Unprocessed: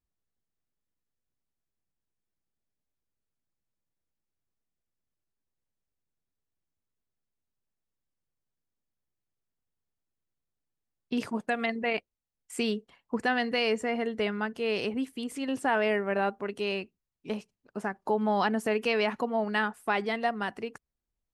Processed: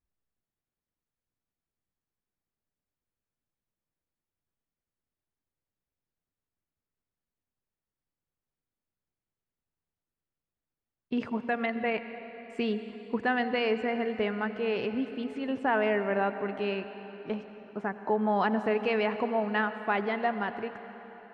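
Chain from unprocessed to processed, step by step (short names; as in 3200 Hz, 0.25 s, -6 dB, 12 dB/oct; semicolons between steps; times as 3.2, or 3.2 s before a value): LPF 2500 Hz 12 dB/oct; on a send: reverb RT60 4.2 s, pre-delay 78 ms, DRR 10 dB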